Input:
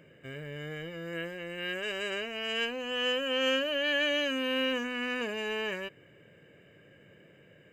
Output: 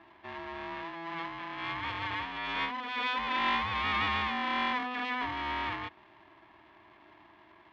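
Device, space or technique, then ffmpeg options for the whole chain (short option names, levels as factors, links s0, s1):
ring modulator pedal into a guitar cabinet: -af "aeval=exprs='val(0)*sgn(sin(2*PI*500*n/s))':c=same,highpass=82,equalizer=f=160:t=q:w=4:g=-6,equalizer=f=310:t=q:w=4:g=7,equalizer=f=500:t=q:w=4:g=4,equalizer=f=960:t=q:w=4:g=6,equalizer=f=1700:t=q:w=4:g=7,lowpass=f=3700:w=0.5412,lowpass=f=3700:w=1.3066,volume=0.708"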